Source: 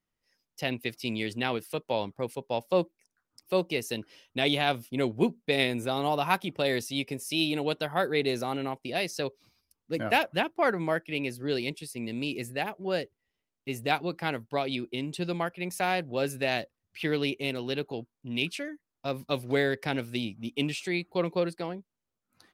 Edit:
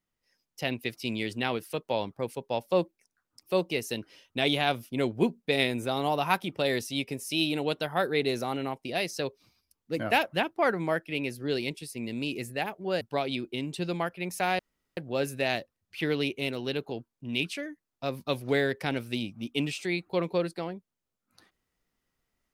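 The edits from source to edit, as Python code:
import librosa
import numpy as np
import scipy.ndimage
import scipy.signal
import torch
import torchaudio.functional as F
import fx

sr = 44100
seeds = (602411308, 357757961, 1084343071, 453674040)

y = fx.edit(x, sr, fx.cut(start_s=13.01, length_s=1.4),
    fx.insert_room_tone(at_s=15.99, length_s=0.38), tone=tone)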